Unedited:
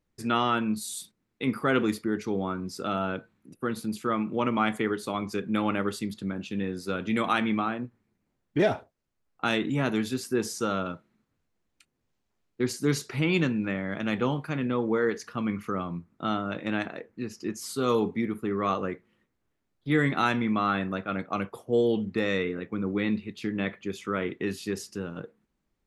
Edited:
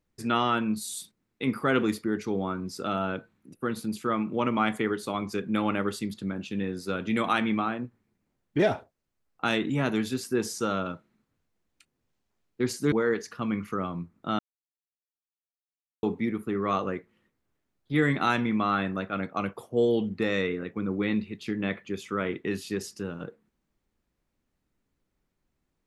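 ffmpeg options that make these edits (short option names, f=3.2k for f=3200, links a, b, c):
-filter_complex "[0:a]asplit=4[a][b][c][d];[a]atrim=end=12.922[e];[b]atrim=start=14.878:end=16.35,asetpts=PTS-STARTPTS,afade=t=out:st=1.468:d=0.004:c=hsin[f];[c]atrim=start=16.35:end=17.99,asetpts=PTS-STARTPTS,volume=0[g];[d]atrim=start=17.99,asetpts=PTS-STARTPTS,afade=t=in:d=0.004:c=hsin[h];[f][g][h]concat=n=3:v=0:a=1[i];[e][i]acrossfade=d=0.004:c1=hsin:c2=hsin"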